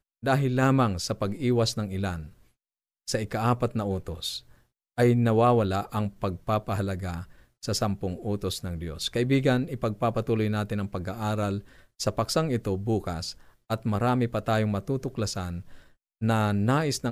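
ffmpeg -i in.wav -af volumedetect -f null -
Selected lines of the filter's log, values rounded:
mean_volume: -27.2 dB
max_volume: -10.4 dB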